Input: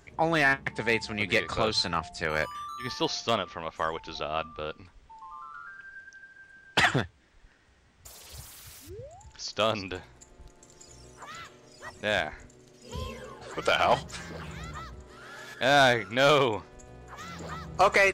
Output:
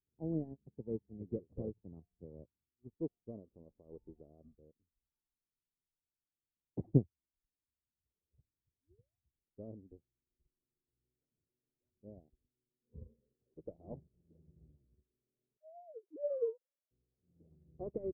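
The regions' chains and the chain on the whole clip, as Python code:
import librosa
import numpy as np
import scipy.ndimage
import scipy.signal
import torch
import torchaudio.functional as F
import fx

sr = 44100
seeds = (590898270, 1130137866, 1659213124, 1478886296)

y = fx.chain(x, sr, fx.low_shelf(hz=240.0, db=-3.5),
    fx.env_flatten(amount_pct=50), at=(3.29, 4.55))
y = fx.chain(y, sr, fx.sine_speech(),
    fx.low_shelf(hz=480.0, db=7.5), at=(15.57, 16.91))
y = scipy.signal.sosfilt(scipy.signal.cheby2(4, 60, 1400.0, 'lowpass', fs=sr, output='sos'), y)
y = fx.upward_expand(y, sr, threshold_db=-51.0, expansion=2.5)
y = y * 10.0 ** (3.5 / 20.0)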